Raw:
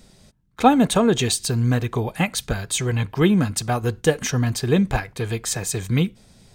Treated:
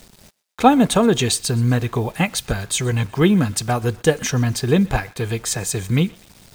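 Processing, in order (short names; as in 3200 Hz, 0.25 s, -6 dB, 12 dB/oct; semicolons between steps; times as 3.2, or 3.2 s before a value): requantised 8-bit, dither none; thinning echo 0.124 s, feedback 49%, high-pass 740 Hz, level -22.5 dB; gain +2 dB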